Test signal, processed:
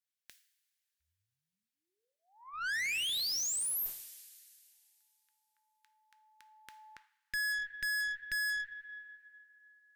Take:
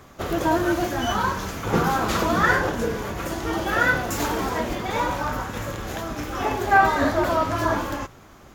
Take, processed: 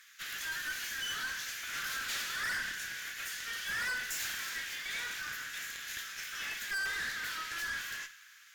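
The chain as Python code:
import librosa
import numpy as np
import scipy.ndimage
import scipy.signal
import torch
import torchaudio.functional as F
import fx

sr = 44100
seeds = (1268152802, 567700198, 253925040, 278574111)

y = scipy.signal.sosfilt(scipy.signal.ellip(4, 1.0, 60, 1600.0, 'highpass', fs=sr, output='sos'), x)
y = fx.rev_double_slope(y, sr, seeds[0], early_s=0.51, late_s=2.6, knee_db=-16, drr_db=9.5)
y = fx.tube_stage(y, sr, drive_db=33.0, bias=0.4)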